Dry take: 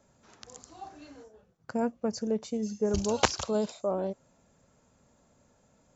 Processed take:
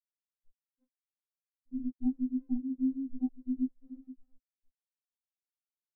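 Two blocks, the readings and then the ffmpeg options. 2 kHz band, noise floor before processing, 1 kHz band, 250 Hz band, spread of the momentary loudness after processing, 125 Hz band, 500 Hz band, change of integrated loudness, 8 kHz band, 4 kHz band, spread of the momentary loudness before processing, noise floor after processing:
below −40 dB, −67 dBFS, below −25 dB, +0.5 dB, 17 LU, below −20 dB, below −35 dB, −4.0 dB, can't be measured, below −40 dB, 21 LU, below −85 dBFS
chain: -filter_complex "[0:a]asplit=2[link_01][link_02];[link_02]acompressor=threshold=-36dB:ratio=10,volume=3dB[link_03];[link_01][link_03]amix=inputs=2:normalize=0,acrossover=split=820[link_04][link_05];[link_04]aeval=exprs='val(0)*(1-1/2+1/2*cos(2*PI*6.3*n/s))':channel_layout=same[link_06];[link_05]aeval=exprs='val(0)*(1-1/2-1/2*cos(2*PI*6.3*n/s))':channel_layout=same[link_07];[link_06][link_07]amix=inputs=2:normalize=0,asplit=5[link_08][link_09][link_10][link_11][link_12];[link_09]adelay=360,afreqshift=-52,volume=-6dB[link_13];[link_10]adelay=720,afreqshift=-104,volume=-14.9dB[link_14];[link_11]adelay=1080,afreqshift=-156,volume=-23.7dB[link_15];[link_12]adelay=1440,afreqshift=-208,volume=-32.6dB[link_16];[link_08][link_13][link_14][link_15][link_16]amix=inputs=5:normalize=0,aresample=16000,acrusher=samples=34:mix=1:aa=0.000001,aresample=44100,tiltshelf=frequency=1300:gain=5.5,afftfilt=real='re*gte(hypot(re,im),0.224)':imag='im*gte(hypot(re,im),0.224)':win_size=1024:overlap=0.75,lowshelf=frequency=120:gain=-12,afftfilt=real='re*3.46*eq(mod(b,12),0)':imag='im*3.46*eq(mod(b,12),0)':win_size=2048:overlap=0.75,volume=-1.5dB"

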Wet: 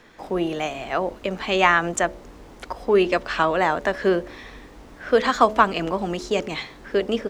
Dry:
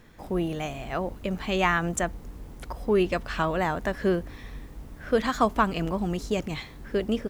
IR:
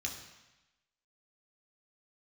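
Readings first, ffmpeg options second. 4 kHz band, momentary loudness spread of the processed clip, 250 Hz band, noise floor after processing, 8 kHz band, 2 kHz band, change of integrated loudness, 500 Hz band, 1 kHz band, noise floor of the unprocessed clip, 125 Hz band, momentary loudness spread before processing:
+7.0 dB, 14 LU, +1.5 dB, −45 dBFS, +3.5 dB, +7.0 dB, +5.5 dB, +6.0 dB, +7.0 dB, −45 dBFS, −2.5 dB, 19 LU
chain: -filter_complex "[0:a]acrossover=split=270 7700:gain=0.224 1 0.224[link_01][link_02][link_03];[link_01][link_02][link_03]amix=inputs=3:normalize=0,bandreject=frequency=71.68:width_type=h:width=4,bandreject=frequency=143.36:width_type=h:width=4,bandreject=frequency=215.04:width_type=h:width=4,bandreject=frequency=286.72:width_type=h:width=4,bandreject=frequency=358.4:width_type=h:width=4,bandreject=frequency=430.08:width_type=h:width=4,bandreject=frequency=501.76:width_type=h:width=4,bandreject=frequency=573.44:width_type=h:width=4,bandreject=frequency=645.12:width_type=h:width=4,volume=7dB"

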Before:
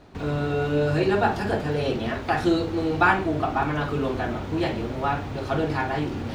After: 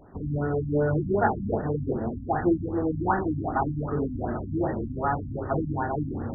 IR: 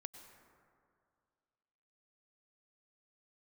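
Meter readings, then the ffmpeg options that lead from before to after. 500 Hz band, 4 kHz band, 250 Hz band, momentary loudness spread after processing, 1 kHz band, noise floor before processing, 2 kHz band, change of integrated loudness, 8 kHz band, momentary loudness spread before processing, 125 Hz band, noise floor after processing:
−3.0 dB, below −40 dB, −1.5 dB, 5 LU, −3.5 dB, −33 dBFS, −9.0 dB, −3.0 dB, can't be measured, 7 LU, −1.0 dB, −36 dBFS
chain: -af "afftfilt=real='re*lt(b*sr/1024,280*pow(2000/280,0.5+0.5*sin(2*PI*2.6*pts/sr)))':imag='im*lt(b*sr/1024,280*pow(2000/280,0.5+0.5*sin(2*PI*2.6*pts/sr)))':win_size=1024:overlap=0.75,volume=-1dB"

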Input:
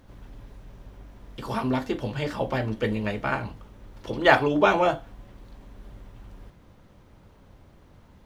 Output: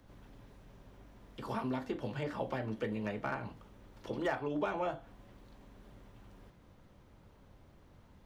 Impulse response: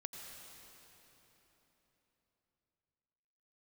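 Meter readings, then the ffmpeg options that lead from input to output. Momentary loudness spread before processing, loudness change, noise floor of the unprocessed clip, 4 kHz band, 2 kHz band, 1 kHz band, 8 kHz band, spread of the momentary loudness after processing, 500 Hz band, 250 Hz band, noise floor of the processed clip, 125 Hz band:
16 LU, −13.0 dB, −54 dBFS, −16.5 dB, −16.0 dB, −14.0 dB, can't be measured, 22 LU, −12.5 dB, −10.5 dB, −61 dBFS, −11.5 dB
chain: -filter_complex "[0:a]acrossover=split=110|2400[link_01][link_02][link_03];[link_01]acompressor=threshold=-51dB:ratio=4[link_04];[link_02]acompressor=threshold=-26dB:ratio=4[link_05];[link_03]acompressor=threshold=-51dB:ratio=4[link_06];[link_04][link_05][link_06]amix=inputs=3:normalize=0,acrossover=split=540|1500[link_07][link_08][link_09];[link_09]asoftclip=type=hard:threshold=-33dB[link_10];[link_07][link_08][link_10]amix=inputs=3:normalize=0,volume=-6.5dB"

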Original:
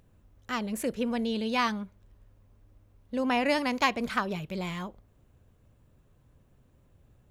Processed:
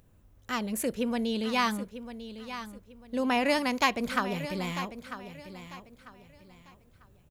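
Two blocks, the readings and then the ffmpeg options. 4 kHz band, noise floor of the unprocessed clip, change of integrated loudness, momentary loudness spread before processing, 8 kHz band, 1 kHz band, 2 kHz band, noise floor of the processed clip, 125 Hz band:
+1.5 dB, −63 dBFS, −0.5 dB, 11 LU, +4.0 dB, +0.5 dB, +0.5 dB, −61 dBFS, 0.0 dB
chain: -filter_complex "[0:a]highshelf=frequency=8100:gain=7.5,asplit=2[link_01][link_02];[link_02]aecho=0:1:946|1892|2838:0.251|0.0728|0.0211[link_03];[link_01][link_03]amix=inputs=2:normalize=0"

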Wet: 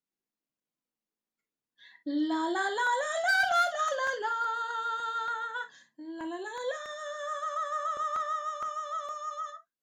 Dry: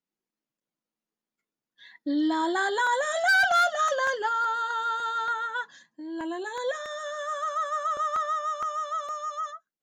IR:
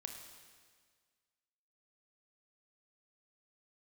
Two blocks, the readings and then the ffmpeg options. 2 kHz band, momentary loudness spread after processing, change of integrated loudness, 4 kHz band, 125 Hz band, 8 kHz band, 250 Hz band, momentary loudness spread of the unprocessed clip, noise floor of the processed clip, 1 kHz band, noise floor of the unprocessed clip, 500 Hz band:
−4.5 dB, 12 LU, −4.5 dB, −4.0 dB, can't be measured, −4.0 dB, −4.0 dB, 13 LU, below −85 dBFS, −4.0 dB, below −85 dBFS, −4.0 dB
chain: -filter_complex "[1:a]atrim=start_sample=2205,atrim=end_sample=3087[link_01];[0:a][link_01]afir=irnorm=-1:irlink=0"

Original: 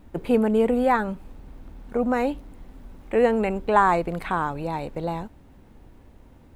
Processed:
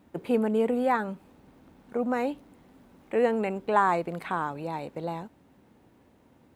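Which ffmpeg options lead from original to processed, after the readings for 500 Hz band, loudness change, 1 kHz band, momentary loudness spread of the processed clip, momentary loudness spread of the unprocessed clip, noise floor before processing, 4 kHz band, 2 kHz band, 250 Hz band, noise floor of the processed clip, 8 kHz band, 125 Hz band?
−4.5 dB, −4.5 dB, −4.5 dB, 13 LU, 12 LU, −51 dBFS, −4.5 dB, −4.5 dB, −5.0 dB, −61 dBFS, can't be measured, −6.5 dB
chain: -af "highpass=140,volume=-4.5dB"

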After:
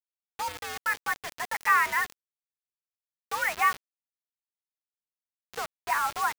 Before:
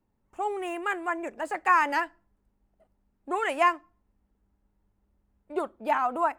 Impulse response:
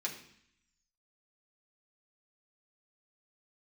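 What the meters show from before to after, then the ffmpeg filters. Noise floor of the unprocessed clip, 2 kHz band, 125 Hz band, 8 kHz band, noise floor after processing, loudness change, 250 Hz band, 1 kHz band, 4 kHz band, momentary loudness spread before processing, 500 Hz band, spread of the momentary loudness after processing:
−75 dBFS, +3.0 dB, can't be measured, +10.5 dB, below −85 dBFS, −0.5 dB, −17.5 dB, −2.0 dB, +5.0 dB, 11 LU, −11.5 dB, 14 LU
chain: -af "aeval=exprs='val(0)+0.5*0.0211*sgn(val(0))':channel_layout=same,aderivative,aeval=exprs='0.0841*(cos(1*acos(clip(val(0)/0.0841,-1,1)))-cos(1*PI/2))+0.00531*(cos(4*acos(clip(val(0)/0.0841,-1,1)))-cos(4*PI/2))':channel_layout=same,acontrast=54,highpass=frequency=340:width_type=q:width=0.5412,highpass=frequency=340:width_type=q:width=1.307,lowpass=frequency=2200:width_type=q:width=0.5176,lowpass=frequency=2200:width_type=q:width=0.7071,lowpass=frequency=2200:width_type=q:width=1.932,afreqshift=91,acrusher=bits=6:mix=0:aa=0.000001,volume=8dB"

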